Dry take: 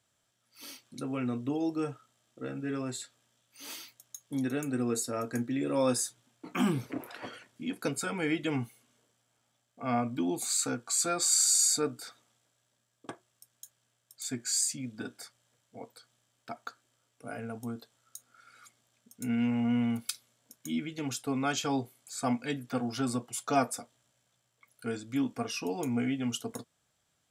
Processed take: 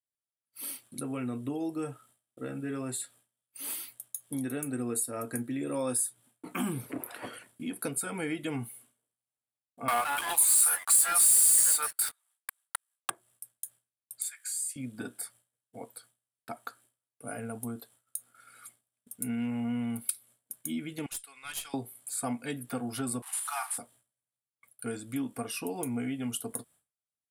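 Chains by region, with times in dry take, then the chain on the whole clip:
9.88–13.10 s: high-pass 840 Hz 24 dB/octave + waveshaping leveller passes 5 + ever faster or slower copies 169 ms, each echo +3 st, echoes 2, each echo -6 dB
14.28–14.76 s: inverse Chebyshev high-pass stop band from 230 Hz, stop band 80 dB + compression 2:1, threshold -41 dBFS
21.06–21.74 s: Butterworth band-pass 4.2 kHz, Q 0.62 + valve stage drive 31 dB, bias 0.65
23.22–23.78 s: one-bit delta coder 64 kbps, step -40.5 dBFS + steep high-pass 780 Hz 72 dB/octave + doubling 36 ms -9 dB
whole clip: expander -58 dBFS; resonant high shelf 7.8 kHz +9 dB, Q 3; compression 2:1, threshold -35 dBFS; trim +1.5 dB

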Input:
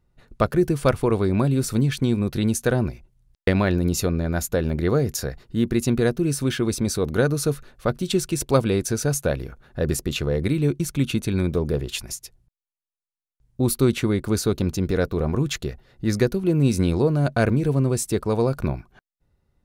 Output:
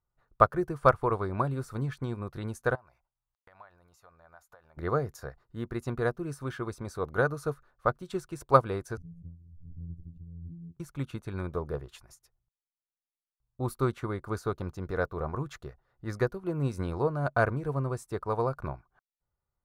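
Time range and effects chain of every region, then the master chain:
2.75–4.77 s: resonant low shelf 500 Hz -12 dB, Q 1.5 + compression 8:1, threshold -37 dBFS
8.97–10.77 s: inverse Chebyshev low-pass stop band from 660 Hz, stop band 60 dB + robot voice 84.6 Hz + swell ahead of each attack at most 27 dB/s
whole clip: FFT filter 130 Hz 0 dB, 220 Hz -7 dB, 1.2 kHz +11 dB, 2.6 kHz -6 dB; upward expansion 1.5:1, over -39 dBFS; trim -4.5 dB

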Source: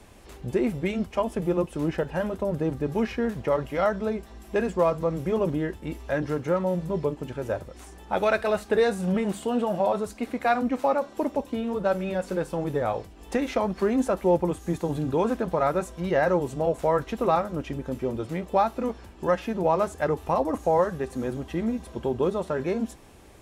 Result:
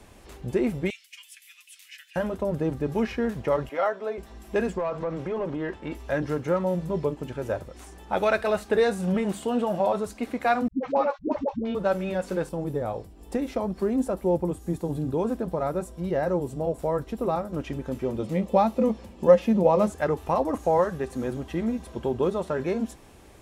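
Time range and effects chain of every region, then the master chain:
0.90–2.16 s: steep high-pass 2.1 kHz + treble shelf 11 kHz +6 dB
3.69–4.18 s: high-pass 430 Hz + treble shelf 3.7 kHz -10.5 dB + comb 7.4 ms, depth 44%
4.78–5.95 s: low-pass 7.9 kHz + compression, threshold -26 dBFS + overdrive pedal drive 13 dB, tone 1.7 kHz, clips at -19 dBFS
10.68–11.75 s: low-pass 5.4 kHz 24 dB/octave + gate -35 dBFS, range -42 dB + phase dispersion highs, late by 123 ms, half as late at 330 Hz
12.49–17.53 s: peaking EQ 2.1 kHz -9.5 dB 2.9 oct + band-stop 6.4 kHz, Q 11
18.18–19.90 s: high-pass 40 Hz + peaking EQ 1.5 kHz -8.5 dB 0.37 oct + small resonant body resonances 210/520 Hz, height 12 dB, ringing for 85 ms
whole clip: none

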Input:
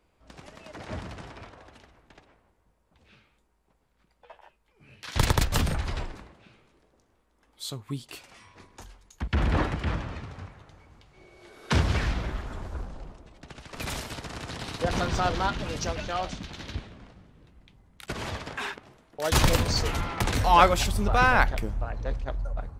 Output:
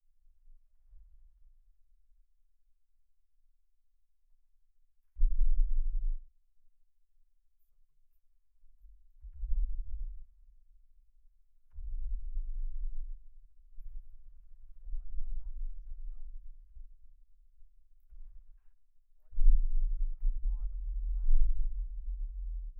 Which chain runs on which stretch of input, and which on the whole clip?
9.50–10.22 s: square wave that keeps the level + peaking EQ 480 Hz +3.5 dB 0.31 oct
whole clip: low-pass that closes with the level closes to 1 kHz; inverse Chebyshev band-stop 110–9000 Hz, stop band 70 dB; peaking EQ 1.2 kHz +4 dB 1.8 oct; trim +12 dB

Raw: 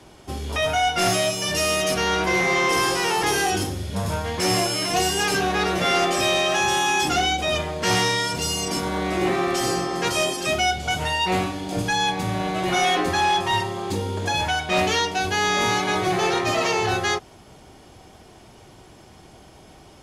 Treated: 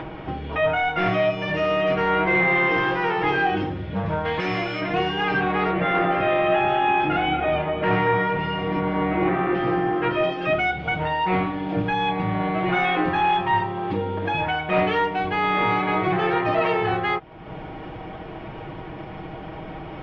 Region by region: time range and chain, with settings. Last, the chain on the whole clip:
4.25–4.81 s: peaking EQ 14 kHz +12.5 dB 2.8 oct + compression 2:1, threshold -19 dBFS
5.71–10.24 s: distance through air 180 m + echo whose repeats swap between lows and highs 233 ms, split 2.1 kHz, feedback 51%, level -5.5 dB
whole clip: inverse Chebyshev low-pass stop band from 9.9 kHz, stop band 70 dB; upward compressor, threshold -24 dBFS; comb 6.3 ms, depth 53%

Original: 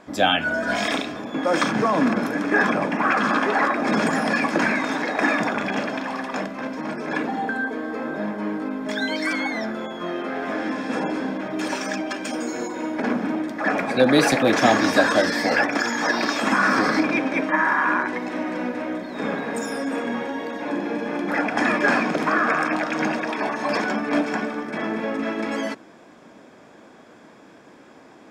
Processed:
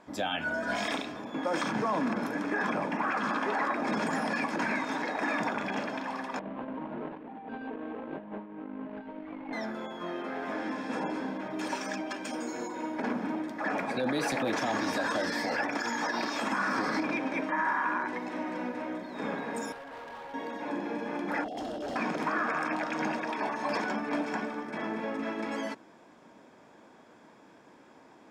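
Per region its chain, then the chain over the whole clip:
6.39–9.53 s: median filter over 25 samples + low-pass 2.6 kHz 24 dB/octave + compressor with a negative ratio -31 dBFS, ratio -0.5
19.72–20.34 s: three-band isolator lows -21 dB, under 480 Hz, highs -21 dB, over 2.1 kHz + hard clipper -34 dBFS
21.44–21.96 s: brick-wall FIR band-stop 810–2700 Hz + tone controls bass -10 dB, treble -6 dB + overload inside the chain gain 24.5 dB
whole clip: peak limiter -13 dBFS; peaking EQ 920 Hz +6 dB 0.24 oct; trim -8.5 dB

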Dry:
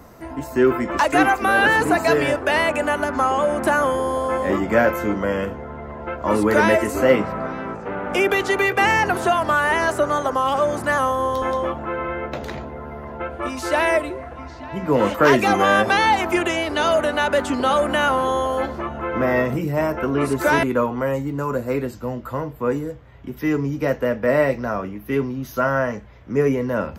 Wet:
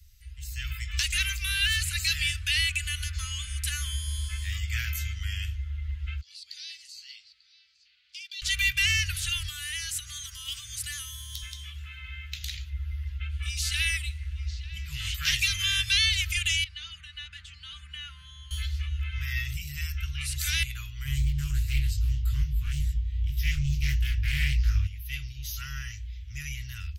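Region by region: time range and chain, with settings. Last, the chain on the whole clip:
6.21–8.42 s: band-pass filter 4.5 kHz, Q 7.7 + upward compressor, threshold -55 dBFS
9.48–12.70 s: high-pass 150 Hz 6 dB/octave + treble shelf 6.7 kHz +7 dB + compression 2:1, threshold -26 dBFS
16.64–18.51 s: band-pass filter 440 Hz, Q 0.83 + comb 5.8 ms, depth 39%
21.05–24.87 s: bass shelf 350 Hz +9.5 dB + doubling 21 ms -3 dB + loudspeaker Doppler distortion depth 0.34 ms
whole clip: inverse Chebyshev band-stop 280–790 Hz, stop band 80 dB; treble shelf 3.5 kHz -9 dB; level rider gain up to 11.5 dB

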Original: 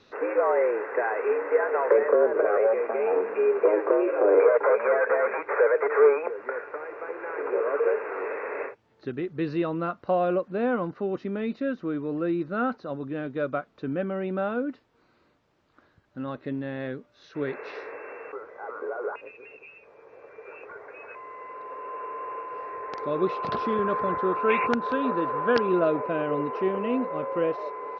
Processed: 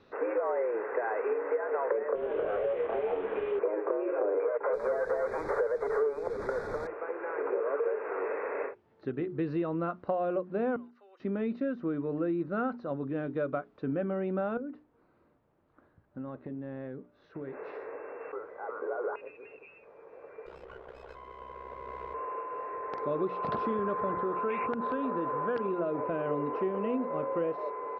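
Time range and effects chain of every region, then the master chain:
2.15–3.59 s: CVSD coder 16 kbps + compression 3:1, threshold -25 dBFS + doubling 25 ms -5 dB
4.73–6.87 s: one-bit delta coder 64 kbps, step -30 dBFS + Butterworth band-stop 2.9 kHz, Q 1.8 + tilt EQ -2 dB/octave
10.76–11.20 s: high-pass 440 Hz 24 dB/octave + differentiator + compression 4:1, threshold -52 dBFS
14.57–18.21 s: treble shelf 2.5 kHz -11.5 dB + compression 10:1, threshold -34 dBFS
20.46–22.14 s: ring modulator 32 Hz + sliding maximum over 9 samples
24.13–26.26 s: compression 2.5:1, threshold -26 dBFS + low-pass 4.7 kHz
whole clip: low-pass 1.3 kHz 6 dB/octave; hum notches 60/120/180/240/300/360/420 Hz; compression, threshold -27 dBFS

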